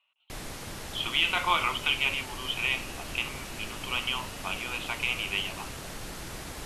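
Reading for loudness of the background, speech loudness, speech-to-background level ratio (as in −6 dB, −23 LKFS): −39.5 LKFS, −29.5 LKFS, 10.0 dB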